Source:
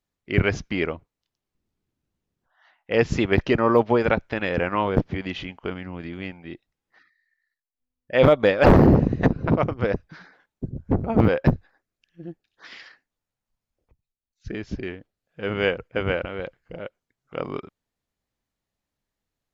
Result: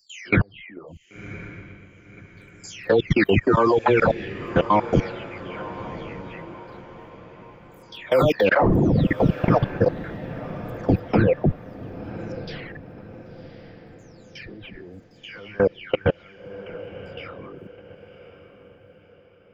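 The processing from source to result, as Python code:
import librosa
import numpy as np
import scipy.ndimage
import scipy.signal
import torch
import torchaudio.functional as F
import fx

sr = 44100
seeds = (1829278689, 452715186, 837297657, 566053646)

y = fx.spec_delay(x, sr, highs='early', ms=506)
y = fx.high_shelf(y, sr, hz=5800.0, db=6.5)
y = fx.level_steps(y, sr, step_db=24)
y = fx.dereverb_blind(y, sr, rt60_s=0.83)
y = fx.echo_diffused(y, sr, ms=1061, feedback_pct=44, wet_db=-14.0)
y = y * librosa.db_to_amplitude(8.5)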